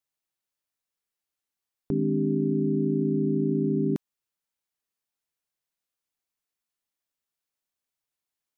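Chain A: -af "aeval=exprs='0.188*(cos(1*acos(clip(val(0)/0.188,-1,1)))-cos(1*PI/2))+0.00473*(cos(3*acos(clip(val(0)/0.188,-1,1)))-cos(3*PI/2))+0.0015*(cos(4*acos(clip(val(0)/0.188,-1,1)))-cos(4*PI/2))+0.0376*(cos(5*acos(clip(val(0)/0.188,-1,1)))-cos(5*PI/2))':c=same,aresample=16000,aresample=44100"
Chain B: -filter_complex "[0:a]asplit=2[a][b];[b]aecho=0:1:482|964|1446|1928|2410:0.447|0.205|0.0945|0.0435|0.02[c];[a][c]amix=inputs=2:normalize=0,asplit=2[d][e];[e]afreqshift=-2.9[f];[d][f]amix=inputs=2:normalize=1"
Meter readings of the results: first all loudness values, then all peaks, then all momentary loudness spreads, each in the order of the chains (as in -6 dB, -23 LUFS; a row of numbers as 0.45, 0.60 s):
-24.0, -27.5 LUFS; -15.0, -13.5 dBFS; 4, 18 LU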